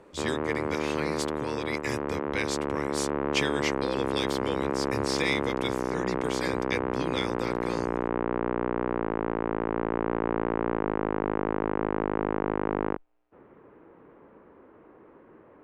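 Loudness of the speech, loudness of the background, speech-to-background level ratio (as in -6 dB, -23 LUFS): -34.0 LUFS, -30.0 LUFS, -4.0 dB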